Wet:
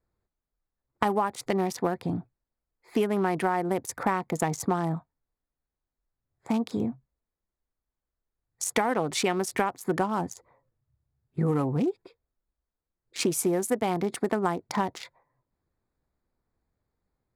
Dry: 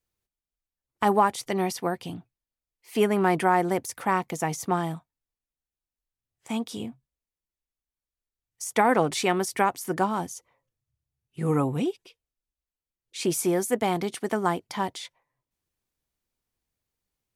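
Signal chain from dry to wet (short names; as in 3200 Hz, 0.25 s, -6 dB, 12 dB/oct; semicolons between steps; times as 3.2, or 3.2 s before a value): Wiener smoothing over 15 samples; compressor, threshold -31 dBFS, peak gain reduction 14.5 dB; gain +8 dB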